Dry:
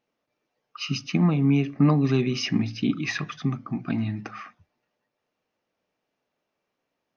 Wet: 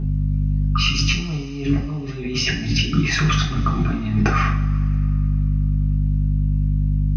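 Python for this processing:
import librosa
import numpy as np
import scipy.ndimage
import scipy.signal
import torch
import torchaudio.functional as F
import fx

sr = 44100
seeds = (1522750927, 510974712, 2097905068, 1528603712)

y = fx.dmg_buzz(x, sr, base_hz=50.0, harmonics=5, level_db=-38.0, tilt_db=-7, odd_only=False)
y = fx.over_compress(y, sr, threshold_db=-34.0, ratio=-1.0)
y = fx.rev_double_slope(y, sr, seeds[0], early_s=0.35, late_s=2.6, knee_db=-20, drr_db=-2.5)
y = y * librosa.db_to_amplitude(8.0)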